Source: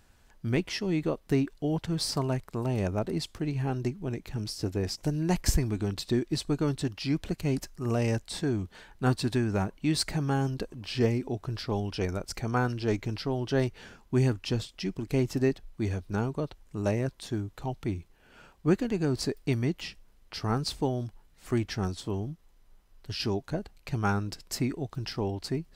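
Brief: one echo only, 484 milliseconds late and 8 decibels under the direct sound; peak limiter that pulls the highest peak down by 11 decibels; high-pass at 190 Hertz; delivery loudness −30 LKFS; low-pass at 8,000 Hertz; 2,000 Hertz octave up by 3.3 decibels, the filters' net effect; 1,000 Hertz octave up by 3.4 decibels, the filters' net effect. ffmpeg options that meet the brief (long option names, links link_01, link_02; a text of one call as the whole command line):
ffmpeg -i in.wav -af "highpass=190,lowpass=8000,equalizer=frequency=1000:width_type=o:gain=4,equalizer=frequency=2000:width_type=o:gain=3,alimiter=limit=-20.5dB:level=0:latency=1,aecho=1:1:484:0.398,volume=3.5dB" out.wav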